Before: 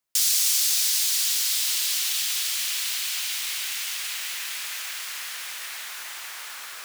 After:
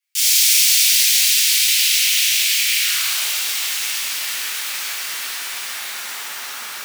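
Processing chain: high-pass sweep 2300 Hz -> 250 Hz, 2.75–3.47; frequency shift -48 Hz; shimmer reverb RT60 1.4 s, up +12 st, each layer -8 dB, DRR -10.5 dB; gain -4 dB

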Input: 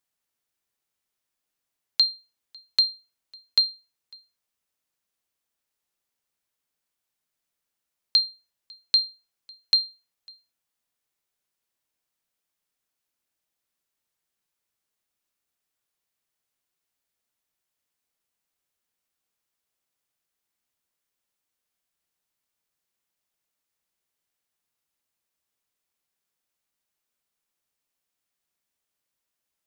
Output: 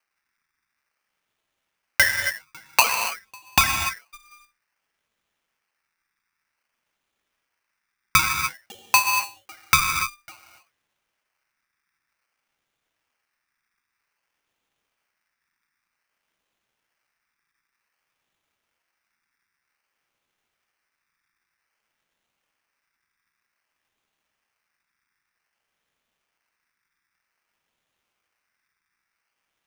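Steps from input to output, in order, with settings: decimation with a swept rate 25×, swing 100% 0.53 Hz; non-linear reverb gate 0.31 s flat, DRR 3.5 dB; polarity switched at an audio rate 1800 Hz; gain +3 dB

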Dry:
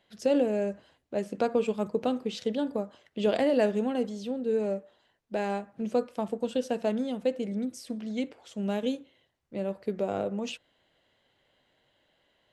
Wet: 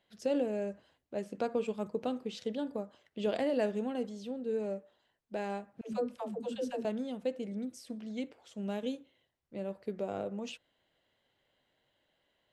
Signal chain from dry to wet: 5.81–6.85 dispersion lows, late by 0.127 s, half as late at 310 Hz; gain -6.5 dB

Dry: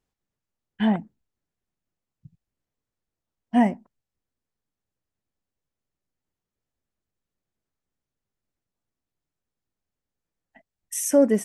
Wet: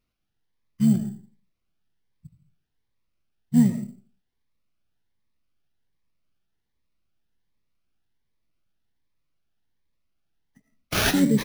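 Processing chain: EQ curve 190 Hz 0 dB, 370 Hz -4 dB, 730 Hz -21 dB, 2900 Hz -12 dB, 5900 Hz +4 dB; reverb RT60 0.45 s, pre-delay 50 ms, DRR 8.5 dB; wow and flutter 25 cents; harmoniser -7 st -8 dB; sample-rate reducer 7900 Hz, jitter 0%; cascading phaser rising 1.3 Hz; gain +3 dB

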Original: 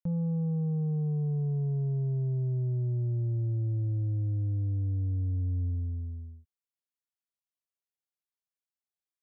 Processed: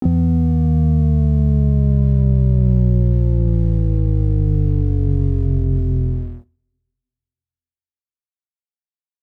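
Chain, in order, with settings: bell 240 Hz +14.5 dB 2.6 oct; compressor 6:1, threshold -24 dBFS, peak gain reduction 8.5 dB; harmoniser -12 st -1 dB, +7 st -5 dB; crossover distortion -53.5 dBFS; two-slope reverb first 0.35 s, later 1.9 s, from -28 dB, DRR 18.5 dB; gain +8.5 dB

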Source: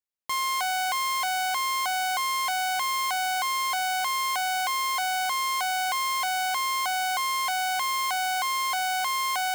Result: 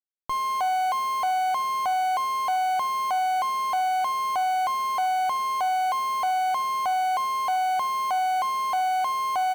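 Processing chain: Schmitt trigger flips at -38.5 dBFS; tilt shelf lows +9 dB, about 1400 Hz; feedback echo 76 ms, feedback 37%, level -20 dB

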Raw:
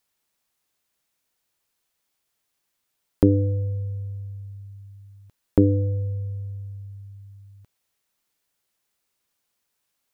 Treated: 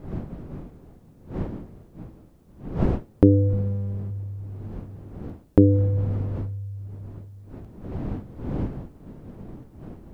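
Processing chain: 3.53–4.11 minimum comb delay 2 ms; wind noise 230 Hz -36 dBFS; gain +2 dB

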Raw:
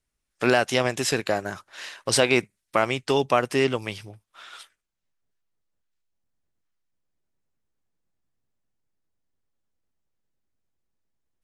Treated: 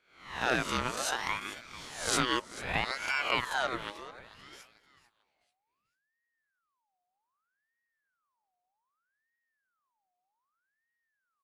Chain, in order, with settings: spectral swells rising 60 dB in 0.58 s; 3.9–4.53 high shelf 3600 Hz -9.5 dB; on a send: feedback echo 0.441 s, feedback 34%, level -16 dB; on the sum: ring modulator with a swept carrier 1300 Hz, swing 45%, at 0.64 Hz; gain -8 dB

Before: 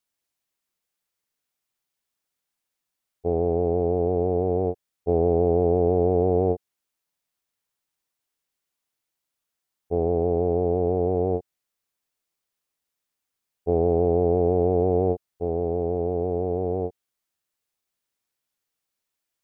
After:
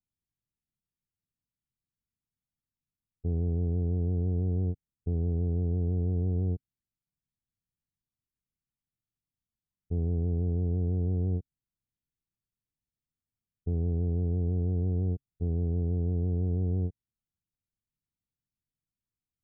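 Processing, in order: EQ curve 140 Hz 0 dB, 260 Hz -9 dB, 600 Hz -28 dB; limiter -31 dBFS, peak gain reduction 7.5 dB; gain +7 dB

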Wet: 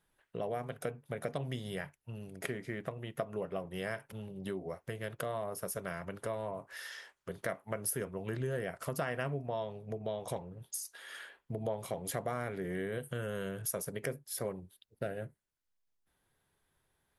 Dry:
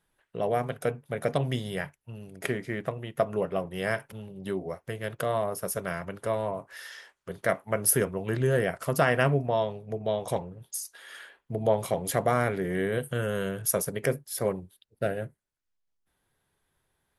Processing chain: compressor 2.5:1, threshold -35 dBFS, peak gain reduction 11.5 dB; gain -2 dB

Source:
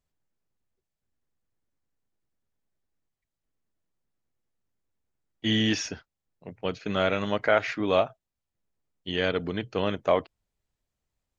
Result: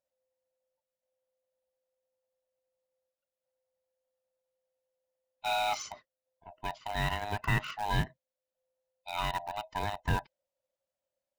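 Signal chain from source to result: band-swap scrambler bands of 500 Hz; in parallel at -11 dB: bit-crush 4-bit; on the sum: gain -8.5 dB

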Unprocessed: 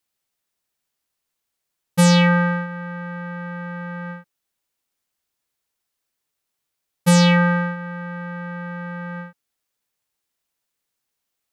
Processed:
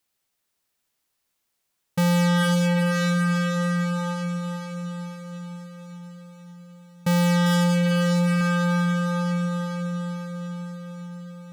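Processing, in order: 7.46–8.41 sample leveller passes 2; diffused feedback echo 0.482 s, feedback 63%, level -7.5 dB; hard clip -21.5 dBFS, distortion -7 dB; gain +2.5 dB

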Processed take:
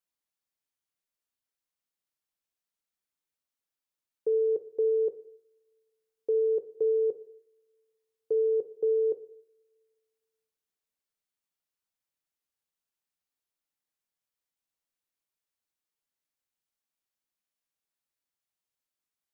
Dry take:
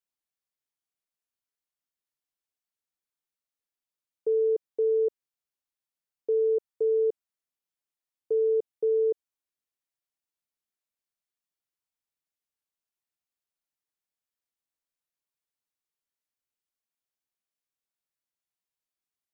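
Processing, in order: two-slope reverb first 0.65 s, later 2.1 s, from -26 dB, DRR 10 dB

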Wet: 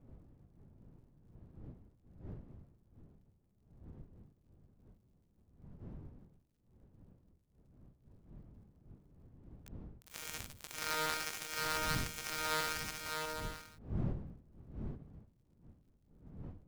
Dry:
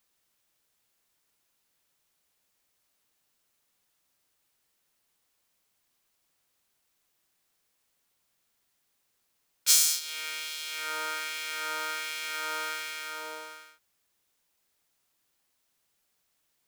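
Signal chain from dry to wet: switching dead time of 0.15 ms; wind noise 160 Hz -51 dBFS; ending taper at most 220 dB/s; gain +1.5 dB

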